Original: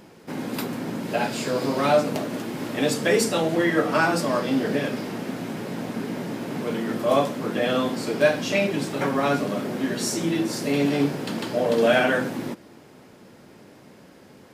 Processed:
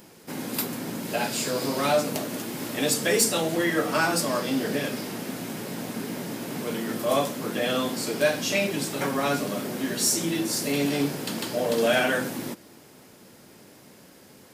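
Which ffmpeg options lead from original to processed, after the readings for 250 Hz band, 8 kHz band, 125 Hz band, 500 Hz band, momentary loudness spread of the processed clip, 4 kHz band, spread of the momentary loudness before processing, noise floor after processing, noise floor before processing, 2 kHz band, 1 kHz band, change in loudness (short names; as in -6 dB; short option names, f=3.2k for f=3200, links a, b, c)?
-3.5 dB, +6.0 dB, -3.5 dB, -3.5 dB, 11 LU, +2.0 dB, 10 LU, -51 dBFS, -49 dBFS, -2.0 dB, -3.0 dB, -2.0 dB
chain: -af "crystalizer=i=2.5:c=0,acontrast=42,volume=-9dB"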